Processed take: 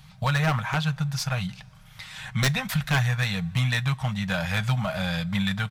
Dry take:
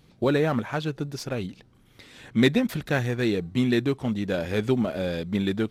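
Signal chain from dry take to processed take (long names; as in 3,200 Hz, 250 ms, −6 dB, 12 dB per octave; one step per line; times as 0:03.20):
Chebyshev band-stop filter 140–870 Hz, order 2
comb filter 6.4 ms, depth 33%
in parallel at 0 dB: downward compressor 6 to 1, threshold −36 dBFS, peak gain reduction 15.5 dB
on the sum: wave folding −18.5 dBFS
convolution reverb, pre-delay 3 ms, DRR 16.5 dB
level +3 dB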